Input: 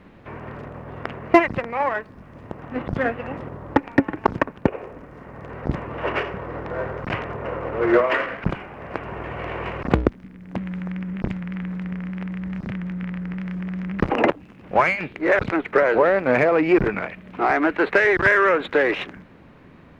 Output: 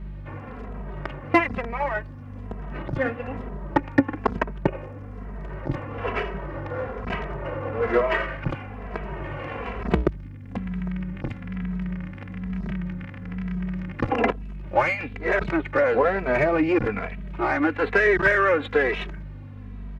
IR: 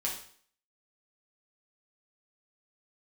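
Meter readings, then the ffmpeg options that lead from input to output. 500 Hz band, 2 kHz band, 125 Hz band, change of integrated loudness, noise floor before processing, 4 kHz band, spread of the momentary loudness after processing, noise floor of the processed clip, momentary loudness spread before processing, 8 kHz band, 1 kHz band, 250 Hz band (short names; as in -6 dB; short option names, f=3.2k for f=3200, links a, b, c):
-3.0 dB, -3.0 dB, -0.5 dB, -3.0 dB, -47 dBFS, -3.0 dB, 16 LU, -38 dBFS, 16 LU, n/a, -3.5 dB, -3.0 dB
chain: -filter_complex "[0:a]aeval=exprs='val(0)+0.0251*(sin(2*PI*50*n/s)+sin(2*PI*2*50*n/s)/2+sin(2*PI*3*50*n/s)/3+sin(2*PI*4*50*n/s)/4+sin(2*PI*5*50*n/s)/5)':c=same,asplit=2[a][b];[b]adelay=2.7,afreqshift=-1.1[c];[a][c]amix=inputs=2:normalize=1"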